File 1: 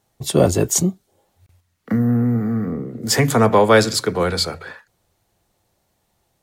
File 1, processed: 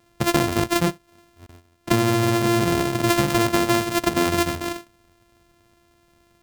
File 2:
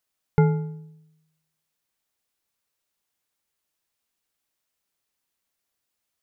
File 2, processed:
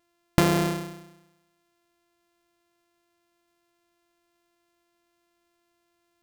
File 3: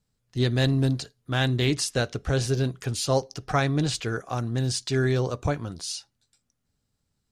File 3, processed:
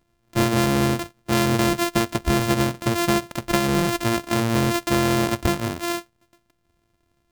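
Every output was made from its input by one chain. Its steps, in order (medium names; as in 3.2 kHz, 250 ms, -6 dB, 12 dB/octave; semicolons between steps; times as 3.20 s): sorted samples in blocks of 128 samples; compression 16:1, threshold -24 dBFS; trim +8 dB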